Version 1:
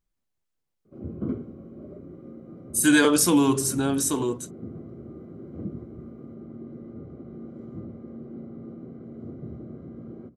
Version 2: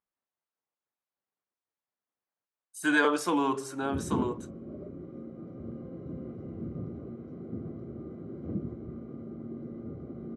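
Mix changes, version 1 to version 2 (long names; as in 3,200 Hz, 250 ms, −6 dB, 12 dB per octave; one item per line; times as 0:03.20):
speech: add resonant band-pass 1,000 Hz, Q 0.89
background: entry +2.90 s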